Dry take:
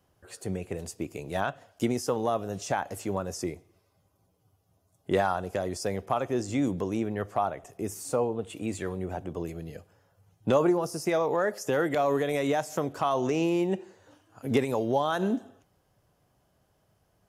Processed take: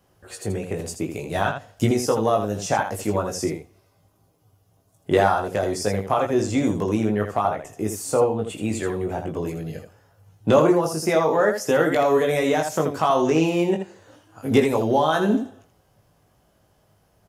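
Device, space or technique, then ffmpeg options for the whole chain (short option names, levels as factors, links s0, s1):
slapback doubling: -filter_complex "[0:a]asplit=3[s0][s1][s2];[s1]adelay=19,volume=0.631[s3];[s2]adelay=81,volume=0.447[s4];[s0][s3][s4]amix=inputs=3:normalize=0,asettb=1/sr,asplit=3[s5][s6][s7];[s5]atrim=end=1.264[s8];[s6]atrim=start=1.26:end=1.91,asetpts=PTS-STARTPTS,afade=t=in:d=0.004:c=qsin,afade=t=out:st=0.646:d=0.004:c=qsin,asubboost=boost=11:cutoff=190[s9];[s7]atrim=start=1.906[s10];[s8][s9]acrossfade=d=0.004:c1=hsin:c2=qsin[s11];[s11][s10]acrossfade=d=0.004:c1=qsin:c2=hsin,volume=1.88"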